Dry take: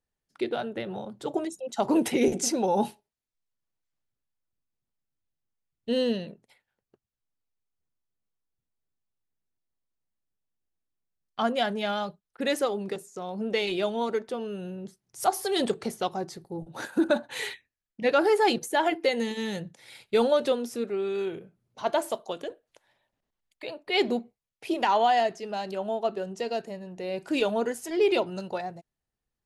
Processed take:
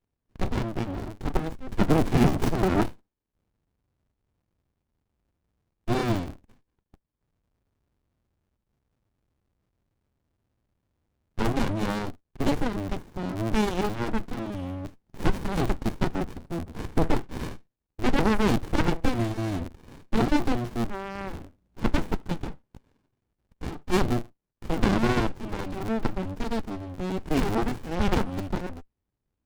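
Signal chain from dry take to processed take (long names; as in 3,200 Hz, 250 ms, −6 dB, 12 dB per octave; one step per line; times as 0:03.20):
sub-harmonics by changed cycles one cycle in 2, inverted
windowed peak hold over 65 samples
level +6.5 dB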